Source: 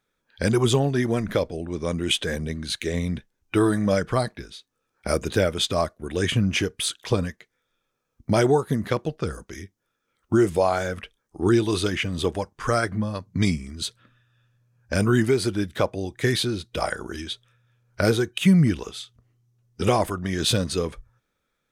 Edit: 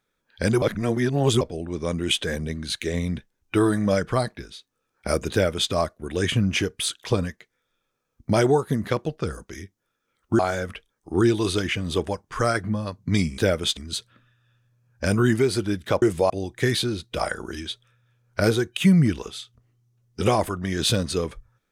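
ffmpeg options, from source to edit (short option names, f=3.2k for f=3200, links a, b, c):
-filter_complex "[0:a]asplit=8[a][b][c][d][e][f][g][h];[a]atrim=end=0.622[i];[b]atrim=start=0.618:end=1.412,asetpts=PTS-STARTPTS,areverse[j];[c]atrim=start=1.408:end=10.392[k];[d]atrim=start=10.668:end=13.662[l];[e]atrim=start=5.318:end=5.712[m];[f]atrim=start=13.658:end=15.912[n];[g]atrim=start=10.388:end=10.672[o];[h]atrim=start=15.908[p];[i][j]acrossfade=d=0.004:c1=hsin:c2=hsin[q];[q][k]acrossfade=d=0.004:c1=hsin:c2=hsin[r];[r][l]acrossfade=d=0.004:c1=hsin:c2=hsin[s];[s][m]acrossfade=d=0.004:c1=hsin:c2=hsin[t];[t][n]acrossfade=d=0.004:c1=hsin:c2=hsin[u];[u][o]acrossfade=d=0.004:c1=hsin:c2=hsin[v];[v][p]acrossfade=d=0.004:c1=hsin:c2=hsin"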